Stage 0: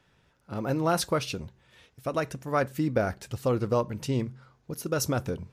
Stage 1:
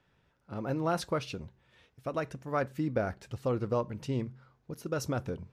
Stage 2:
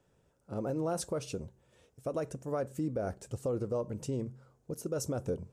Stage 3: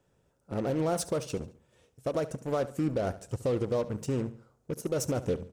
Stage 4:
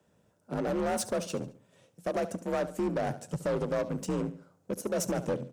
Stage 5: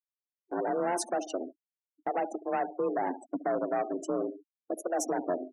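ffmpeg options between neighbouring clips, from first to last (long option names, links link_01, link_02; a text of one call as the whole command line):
ffmpeg -i in.wav -af "lowpass=frequency=3600:poles=1,volume=-4.5dB" out.wav
ffmpeg -i in.wav -af "equalizer=frequency=500:width_type=o:width=1:gain=6,equalizer=frequency=1000:width_type=o:width=1:gain=-3,equalizer=frequency=2000:width_type=o:width=1:gain=-8,equalizer=frequency=4000:width_type=o:width=1:gain=-7,equalizer=frequency=8000:width_type=o:width=1:gain=12,alimiter=level_in=1dB:limit=-24dB:level=0:latency=1:release=95,volume=-1dB" out.wav
ffmpeg -i in.wav -filter_complex "[0:a]asplit=2[link_01][link_02];[link_02]acrusher=bits=5:mix=0:aa=0.5,volume=-4dB[link_03];[link_01][link_03]amix=inputs=2:normalize=0,aecho=1:1:71|142|213:0.158|0.0618|0.0241" out.wav
ffmpeg -i in.wav -filter_complex "[0:a]afreqshift=46,asplit=2[link_01][link_02];[link_02]aeval=exprs='0.141*sin(PI/2*2.51*val(0)/0.141)':channel_layout=same,volume=-5dB[link_03];[link_01][link_03]amix=inputs=2:normalize=0,volume=-8dB" out.wav
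ffmpeg -i in.wav -af "afreqshift=130,afftfilt=real='re*gte(hypot(re,im),0.0158)':imag='im*gte(hypot(re,im),0.0158)':win_size=1024:overlap=0.75,agate=range=-14dB:threshold=-45dB:ratio=16:detection=peak" out.wav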